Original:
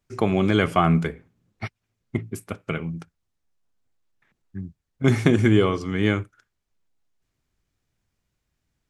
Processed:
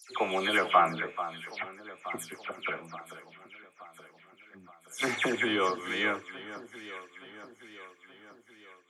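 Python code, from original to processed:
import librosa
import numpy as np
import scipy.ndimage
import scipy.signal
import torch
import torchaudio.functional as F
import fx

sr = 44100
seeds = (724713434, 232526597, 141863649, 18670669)

y = fx.spec_delay(x, sr, highs='early', ms=171)
y = scipy.signal.sosfilt(scipy.signal.butter(2, 630.0, 'highpass', fs=sr, output='sos'), y)
y = fx.echo_alternate(y, sr, ms=437, hz=1600.0, feedback_pct=73, wet_db=-12.0)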